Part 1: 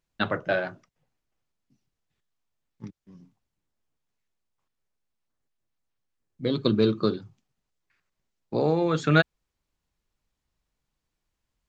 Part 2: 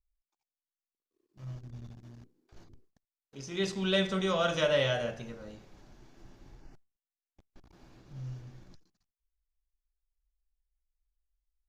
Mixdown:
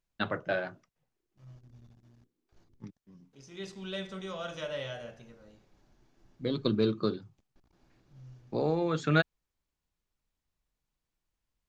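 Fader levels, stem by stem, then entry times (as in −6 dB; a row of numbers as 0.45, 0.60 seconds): −5.5, −10.0 decibels; 0.00, 0.00 seconds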